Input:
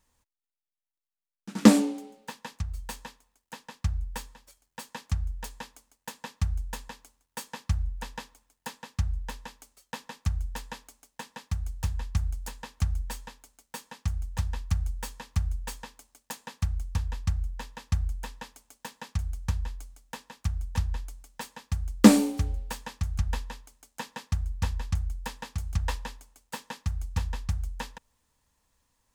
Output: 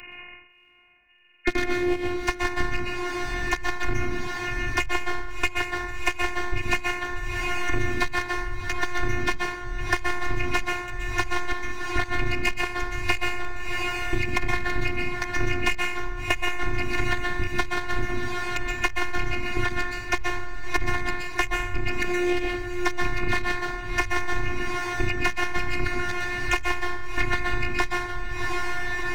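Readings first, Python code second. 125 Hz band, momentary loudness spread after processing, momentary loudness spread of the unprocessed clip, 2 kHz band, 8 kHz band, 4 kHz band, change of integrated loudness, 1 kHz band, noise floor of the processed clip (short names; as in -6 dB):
-2.5 dB, 4 LU, 14 LU, +18.0 dB, +1.0 dB, +8.5 dB, +3.0 dB, +11.5 dB, -40 dBFS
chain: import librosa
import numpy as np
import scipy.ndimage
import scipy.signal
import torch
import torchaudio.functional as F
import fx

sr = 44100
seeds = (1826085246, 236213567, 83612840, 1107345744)

y = fx.freq_compress(x, sr, knee_hz=1500.0, ratio=4.0)
y = fx.highpass(y, sr, hz=180.0, slope=6)
y = fx.low_shelf(y, sr, hz=330.0, db=6.0)
y = fx.leveller(y, sr, passes=3)
y = fx.over_compress(y, sr, threshold_db=-22.0, ratio=-1.0)
y = fx.step_gate(y, sr, bpm=69, pattern='xxx..xxxx.', floor_db=-60.0, edge_ms=4.5)
y = fx.rev_plate(y, sr, seeds[0], rt60_s=0.59, hf_ratio=0.7, predelay_ms=110, drr_db=0.0)
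y = fx.robotise(y, sr, hz=357.0)
y = fx.echo_diffused(y, sr, ms=682, feedback_pct=41, wet_db=-15.5)
y = fx.band_squash(y, sr, depth_pct=100)
y = y * 10.0 ** (1.5 / 20.0)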